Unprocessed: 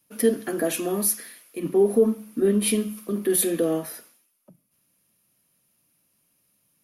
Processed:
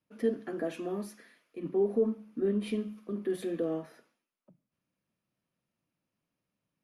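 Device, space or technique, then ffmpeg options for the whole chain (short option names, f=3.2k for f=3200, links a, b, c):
through cloth: -af "lowpass=7.4k,highshelf=f=3.8k:g=-15.5,volume=-8.5dB"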